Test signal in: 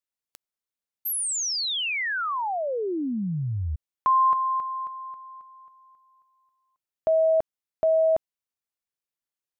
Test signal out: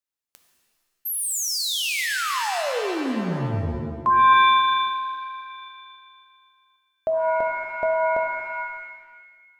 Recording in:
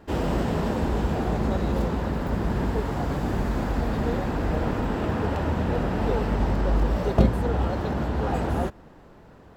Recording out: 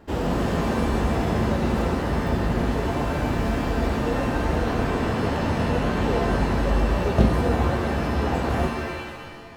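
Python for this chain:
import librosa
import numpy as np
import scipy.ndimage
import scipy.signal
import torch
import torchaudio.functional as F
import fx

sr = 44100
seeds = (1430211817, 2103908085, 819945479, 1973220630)

y = fx.rev_shimmer(x, sr, seeds[0], rt60_s=1.4, semitones=7, shimmer_db=-2, drr_db=5.0)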